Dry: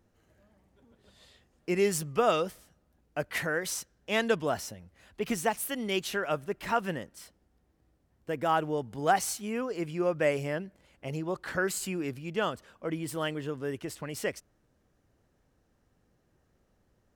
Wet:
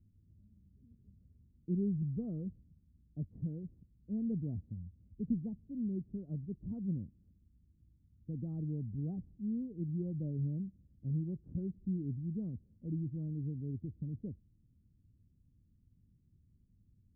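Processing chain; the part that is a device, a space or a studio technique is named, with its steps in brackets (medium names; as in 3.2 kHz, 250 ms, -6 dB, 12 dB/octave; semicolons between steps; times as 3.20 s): the neighbour's flat through the wall (low-pass 230 Hz 24 dB/octave; peaking EQ 92 Hz +6 dB 0.74 oct); trim +2 dB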